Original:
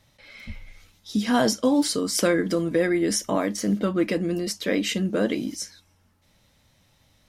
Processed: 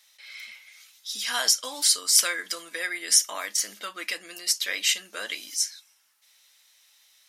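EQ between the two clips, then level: HPF 1500 Hz 12 dB/oct; high shelf 3700 Hz +8.5 dB; +1.5 dB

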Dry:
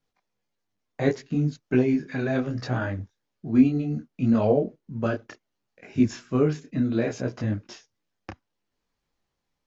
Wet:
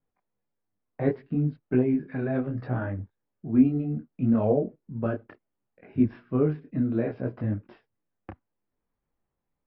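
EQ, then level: elliptic low-pass 5200 Hz; air absorption 390 m; high shelf 2400 Hz -11 dB; 0.0 dB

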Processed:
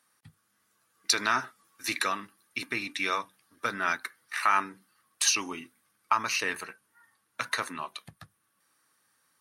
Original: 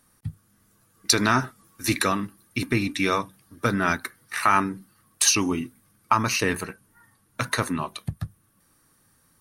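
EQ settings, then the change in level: HPF 1500 Hz 6 dB/oct; high shelf 6000 Hz -10.5 dB; 0.0 dB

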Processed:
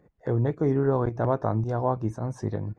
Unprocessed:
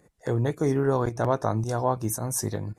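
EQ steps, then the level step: tape spacing loss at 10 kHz 35 dB; +1.5 dB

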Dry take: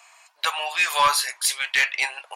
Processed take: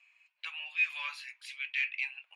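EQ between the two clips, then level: band-pass 2500 Hz, Q 6.2; -6.0 dB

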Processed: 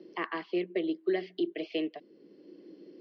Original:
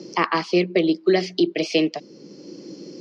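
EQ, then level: air absorption 62 m; speaker cabinet 370–3000 Hz, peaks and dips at 530 Hz -6 dB, 890 Hz -9 dB, 1300 Hz -10 dB, 2400 Hz -9 dB; bell 740 Hz -2.5 dB; -6.5 dB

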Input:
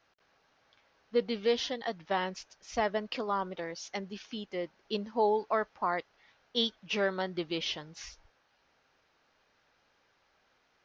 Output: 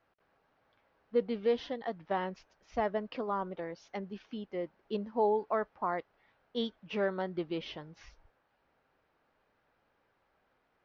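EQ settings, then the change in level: LPF 1200 Hz 6 dB/oct; air absorption 65 m; 0.0 dB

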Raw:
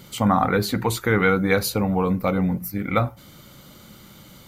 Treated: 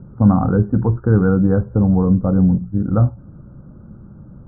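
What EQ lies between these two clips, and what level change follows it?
steep low-pass 1600 Hz 96 dB/oct; tilt shelf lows +6 dB, about 710 Hz; low shelf 250 Hz +11.5 dB; -4.0 dB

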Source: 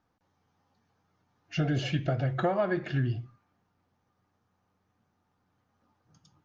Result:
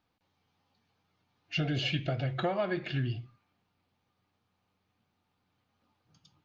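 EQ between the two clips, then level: band shelf 3200 Hz +8.5 dB 1.3 oct; -3.5 dB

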